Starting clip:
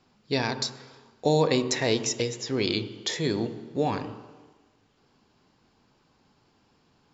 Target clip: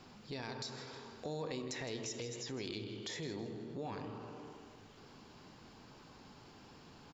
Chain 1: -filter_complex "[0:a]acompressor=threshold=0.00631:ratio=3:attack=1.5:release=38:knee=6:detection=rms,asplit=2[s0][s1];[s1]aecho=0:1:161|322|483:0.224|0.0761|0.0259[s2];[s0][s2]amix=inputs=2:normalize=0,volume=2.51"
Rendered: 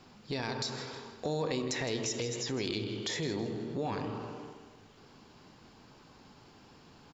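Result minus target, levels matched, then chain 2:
compression: peak gain reduction -8 dB
-filter_complex "[0:a]acompressor=threshold=0.00158:ratio=3:attack=1.5:release=38:knee=6:detection=rms,asplit=2[s0][s1];[s1]aecho=0:1:161|322|483:0.224|0.0761|0.0259[s2];[s0][s2]amix=inputs=2:normalize=0,volume=2.51"

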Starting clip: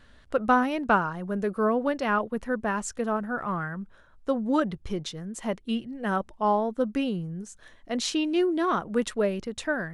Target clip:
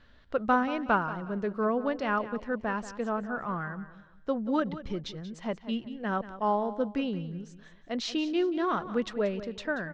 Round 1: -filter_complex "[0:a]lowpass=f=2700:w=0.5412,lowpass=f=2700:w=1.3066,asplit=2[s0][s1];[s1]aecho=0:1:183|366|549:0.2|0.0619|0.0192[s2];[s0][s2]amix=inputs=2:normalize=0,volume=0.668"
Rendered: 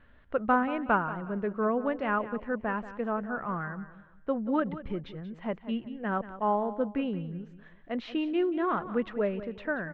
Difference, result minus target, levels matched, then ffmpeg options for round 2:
4 kHz band -7.5 dB
-filter_complex "[0:a]lowpass=f=5400:w=0.5412,lowpass=f=5400:w=1.3066,asplit=2[s0][s1];[s1]aecho=0:1:183|366|549:0.2|0.0619|0.0192[s2];[s0][s2]amix=inputs=2:normalize=0,volume=0.668"

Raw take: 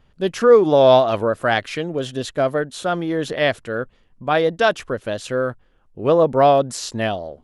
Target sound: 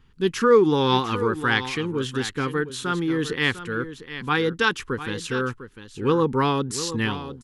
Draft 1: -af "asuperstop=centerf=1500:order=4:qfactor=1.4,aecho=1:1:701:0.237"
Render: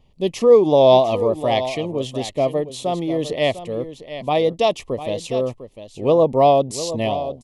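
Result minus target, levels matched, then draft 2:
2 kHz band -13.5 dB
-af "asuperstop=centerf=630:order=4:qfactor=1.4,aecho=1:1:701:0.237"

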